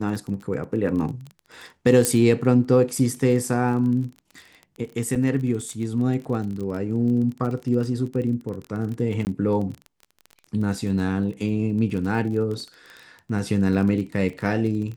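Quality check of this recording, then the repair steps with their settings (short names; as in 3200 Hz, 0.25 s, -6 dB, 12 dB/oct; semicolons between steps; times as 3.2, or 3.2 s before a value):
crackle 24/s -30 dBFS
2.05 pop -5 dBFS
5.15–5.16 gap 6.2 ms
9.25–9.27 gap 19 ms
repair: de-click; interpolate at 5.15, 6.2 ms; interpolate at 9.25, 19 ms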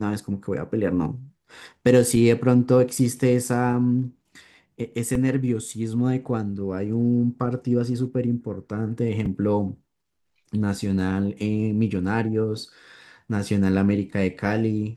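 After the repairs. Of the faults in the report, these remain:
none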